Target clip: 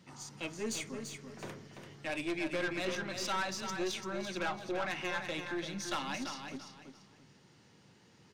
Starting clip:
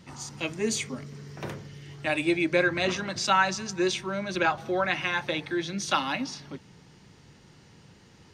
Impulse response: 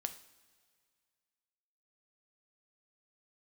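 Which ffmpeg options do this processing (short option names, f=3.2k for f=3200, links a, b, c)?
-af "highpass=120,aeval=exprs='(tanh(15.8*val(0)+0.35)-tanh(0.35))/15.8':c=same,aecho=1:1:339|678|1017:0.447|0.116|0.0302,volume=-6.5dB"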